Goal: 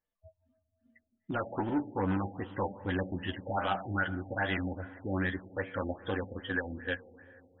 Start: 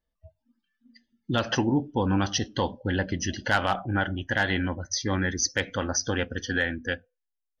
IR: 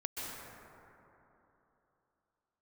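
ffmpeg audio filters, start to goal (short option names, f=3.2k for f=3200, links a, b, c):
-filter_complex "[0:a]volume=21dB,asoftclip=hard,volume=-21dB,lowshelf=f=210:g=-8.5,flanger=delay=10:depth=1.2:regen=21:speed=1.1:shape=triangular,asplit=2[a][b];[1:a]atrim=start_sample=2205,lowpass=4.1k[c];[b][c]afir=irnorm=-1:irlink=0,volume=-17dB[d];[a][d]amix=inputs=2:normalize=0,afftfilt=real='re*lt(b*sr/1024,820*pow(4000/820,0.5+0.5*sin(2*PI*2.5*pts/sr)))':imag='im*lt(b*sr/1024,820*pow(4000/820,0.5+0.5*sin(2*PI*2.5*pts/sr)))':win_size=1024:overlap=0.75"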